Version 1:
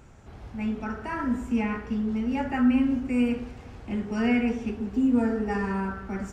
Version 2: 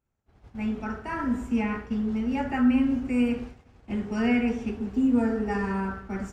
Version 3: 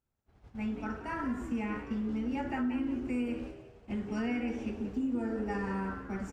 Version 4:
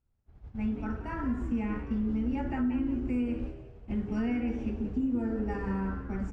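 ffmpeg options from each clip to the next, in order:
ffmpeg -i in.wav -af "agate=range=-33dB:threshold=-33dB:ratio=3:detection=peak" out.wav
ffmpeg -i in.wav -filter_complex "[0:a]acompressor=threshold=-26dB:ratio=4,asplit=5[link_01][link_02][link_03][link_04][link_05];[link_02]adelay=176,afreqshift=78,volume=-12.5dB[link_06];[link_03]adelay=352,afreqshift=156,volume=-21.6dB[link_07];[link_04]adelay=528,afreqshift=234,volume=-30.7dB[link_08];[link_05]adelay=704,afreqshift=312,volume=-39.9dB[link_09];[link_01][link_06][link_07][link_08][link_09]amix=inputs=5:normalize=0,volume=-4.5dB" out.wav
ffmpeg -i in.wav -af "aemphasis=mode=reproduction:type=bsi,bandreject=frequency=50:width_type=h:width=6,bandreject=frequency=100:width_type=h:width=6,bandreject=frequency=150:width_type=h:width=6,bandreject=frequency=200:width_type=h:width=6,crystalizer=i=0.5:c=0,volume=-1.5dB" out.wav

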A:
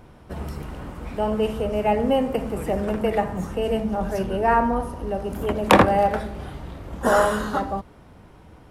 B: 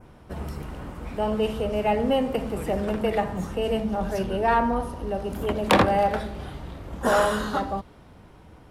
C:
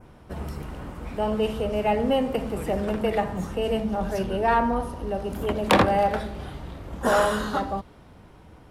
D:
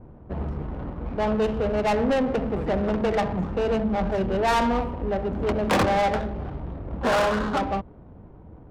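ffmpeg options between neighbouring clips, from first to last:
ffmpeg -i in.wav -af "acontrast=80,adynamicequalizer=threshold=0.01:dfrequency=3800:dqfactor=1.4:tfrequency=3800:tqfactor=1.4:attack=5:release=100:ratio=0.375:range=2.5:mode=boostabove:tftype=bell,volume=-8.5dB" out.wav
ffmpeg -i in.wav -af anull out.wav
ffmpeg -i in.wav -af "asoftclip=type=tanh:threshold=-21.5dB,adynamicsmooth=sensitivity=3.5:basefreq=650,volume=4.5dB" out.wav

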